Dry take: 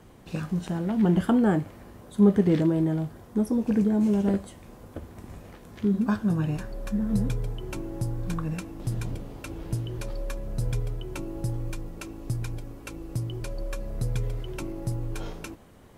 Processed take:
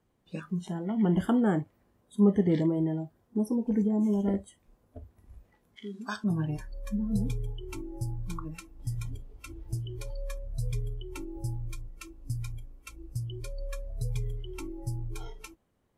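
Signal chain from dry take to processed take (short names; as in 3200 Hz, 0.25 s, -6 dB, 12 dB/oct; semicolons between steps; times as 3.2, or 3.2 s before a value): spectral noise reduction 18 dB; 5.76–6.24 weighting filter ITU-R 468; gain -3.5 dB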